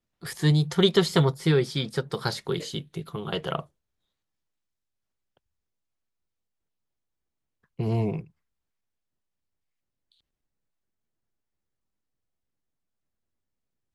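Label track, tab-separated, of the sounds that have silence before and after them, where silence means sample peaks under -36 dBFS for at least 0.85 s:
7.790000	8.200000	sound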